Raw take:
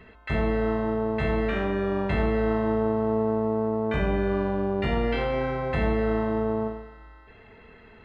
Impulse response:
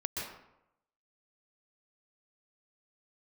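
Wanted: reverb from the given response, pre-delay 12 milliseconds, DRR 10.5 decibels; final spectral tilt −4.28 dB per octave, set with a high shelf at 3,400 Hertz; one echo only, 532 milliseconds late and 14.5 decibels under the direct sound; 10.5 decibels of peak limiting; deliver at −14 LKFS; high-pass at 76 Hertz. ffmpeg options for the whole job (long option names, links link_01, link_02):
-filter_complex "[0:a]highpass=76,highshelf=frequency=3400:gain=-6.5,alimiter=level_in=0.5dB:limit=-24dB:level=0:latency=1,volume=-0.5dB,aecho=1:1:532:0.188,asplit=2[link_01][link_02];[1:a]atrim=start_sample=2205,adelay=12[link_03];[link_02][link_03]afir=irnorm=-1:irlink=0,volume=-14dB[link_04];[link_01][link_04]amix=inputs=2:normalize=0,volume=19.5dB"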